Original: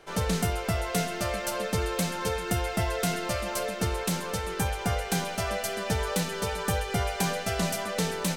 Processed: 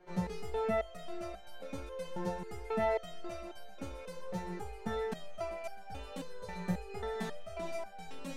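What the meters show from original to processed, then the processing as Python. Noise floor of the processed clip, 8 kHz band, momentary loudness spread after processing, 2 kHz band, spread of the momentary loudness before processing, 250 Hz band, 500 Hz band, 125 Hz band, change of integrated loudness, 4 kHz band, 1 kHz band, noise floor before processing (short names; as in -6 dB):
-49 dBFS, -23.5 dB, 13 LU, -14.0 dB, 2 LU, -10.0 dB, -6.5 dB, -14.0 dB, -10.5 dB, -18.0 dB, -9.5 dB, -36 dBFS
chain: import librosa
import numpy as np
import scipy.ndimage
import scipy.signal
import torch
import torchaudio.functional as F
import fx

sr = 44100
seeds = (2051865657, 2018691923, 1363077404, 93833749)

y = fx.lowpass(x, sr, hz=1200.0, slope=6)
y = fx.resonator_held(y, sr, hz=3.7, low_hz=180.0, high_hz=780.0)
y = F.gain(torch.from_numpy(y), 7.5).numpy()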